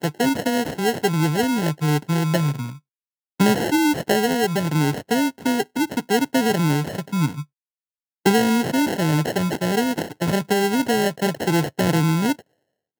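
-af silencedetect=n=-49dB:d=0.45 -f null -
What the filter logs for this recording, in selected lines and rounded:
silence_start: 2.79
silence_end: 3.40 | silence_duration: 0.60
silence_start: 7.45
silence_end: 8.25 | silence_duration: 0.81
silence_start: 12.42
silence_end: 12.99 | silence_duration: 0.57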